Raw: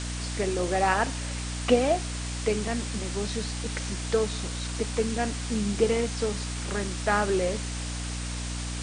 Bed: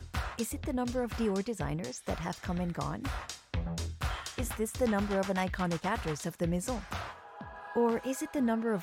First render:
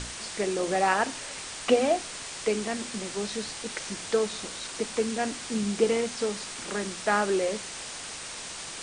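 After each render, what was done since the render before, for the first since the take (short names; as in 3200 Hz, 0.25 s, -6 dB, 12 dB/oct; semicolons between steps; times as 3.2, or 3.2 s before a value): notches 60/120/180/240/300 Hz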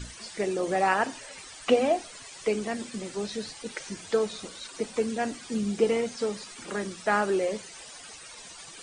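denoiser 14 dB, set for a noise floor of -39 dBFS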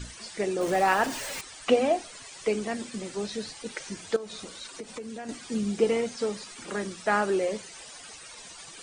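0.61–1.41 zero-crossing step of -33 dBFS; 4.16–5.29 compressor, threshold -35 dBFS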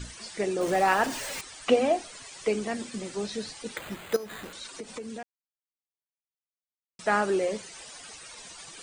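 3.77–4.53 careless resampling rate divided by 8×, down none, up hold; 5.23–6.99 mute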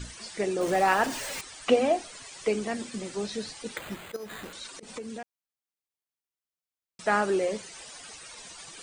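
3.94–4.83 auto swell 0.105 s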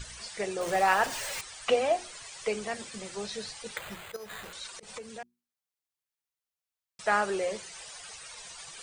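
bell 270 Hz -13 dB 0.91 oct; notches 60/120/180/240/300/360 Hz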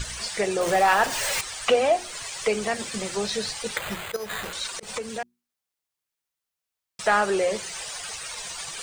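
in parallel at +1.5 dB: compressor, threshold -35 dBFS, peak gain reduction 15 dB; on the sum: sample leveller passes 1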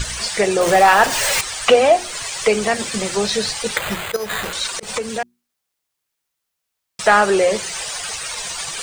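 gain +8 dB; limiter -2 dBFS, peak gain reduction 1.5 dB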